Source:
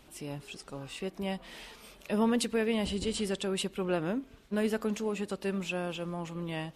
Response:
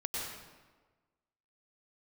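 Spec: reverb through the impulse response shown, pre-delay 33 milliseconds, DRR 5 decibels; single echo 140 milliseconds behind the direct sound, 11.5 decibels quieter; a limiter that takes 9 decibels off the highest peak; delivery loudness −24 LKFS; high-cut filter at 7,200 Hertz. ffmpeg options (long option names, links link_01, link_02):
-filter_complex "[0:a]lowpass=7200,alimiter=level_in=2dB:limit=-24dB:level=0:latency=1,volume=-2dB,aecho=1:1:140:0.266,asplit=2[link_01][link_02];[1:a]atrim=start_sample=2205,adelay=33[link_03];[link_02][link_03]afir=irnorm=-1:irlink=0,volume=-8.5dB[link_04];[link_01][link_04]amix=inputs=2:normalize=0,volume=11dB"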